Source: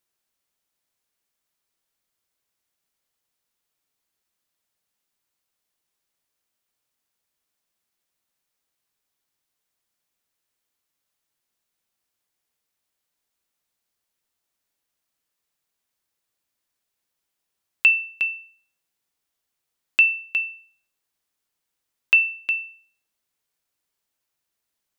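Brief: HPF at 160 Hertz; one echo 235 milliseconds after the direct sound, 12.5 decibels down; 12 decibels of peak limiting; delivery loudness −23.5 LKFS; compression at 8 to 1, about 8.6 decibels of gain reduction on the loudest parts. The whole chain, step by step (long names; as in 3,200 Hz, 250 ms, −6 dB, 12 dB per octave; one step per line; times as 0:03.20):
high-pass filter 160 Hz
downward compressor 8 to 1, threshold −20 dBFS
brickwall limiter −18.5 dBFS
single-tap delay 235 ms −12.5 dB
level +5 dB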